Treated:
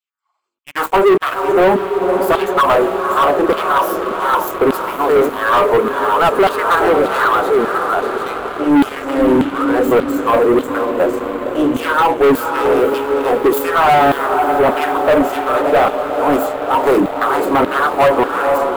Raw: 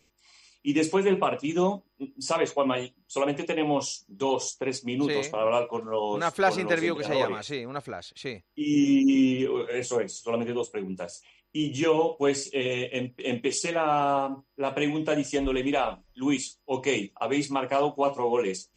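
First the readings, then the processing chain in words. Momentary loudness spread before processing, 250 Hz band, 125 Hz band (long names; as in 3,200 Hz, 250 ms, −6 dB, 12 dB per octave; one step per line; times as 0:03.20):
11 LU, +9.0 dB, +6.0 dB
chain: phase distortion by the signal itself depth 0.27 ms
high shelf with overshoot 1,700 Hz −8.5 dB, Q 3
auto-filter high-pass saw down 1.7 Hz 250–3,600 Hz
feedback delay with all-pass diffusion 515 ms, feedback 65%, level −11 dB
leveller curve on the samples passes 5
parametric band 5,500 Hz −13.5 dB 1.1 octaves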